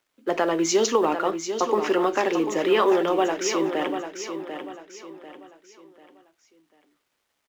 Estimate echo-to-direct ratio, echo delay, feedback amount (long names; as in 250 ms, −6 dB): −8.0 dB, 743 ms, 36%